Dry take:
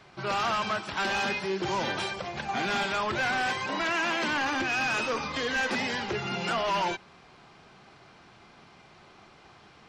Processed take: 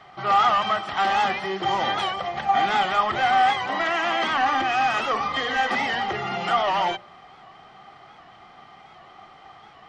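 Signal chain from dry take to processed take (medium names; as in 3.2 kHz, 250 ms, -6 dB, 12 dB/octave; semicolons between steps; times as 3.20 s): treble shelf 5.8 kHz -6.5 dB; de-hum 59.91 Hz, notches 10; small resonant body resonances 770/1200/1900/3100 Hz, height 14 dB, ringing for 25 ms; warped record 78 rpm, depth 100 cents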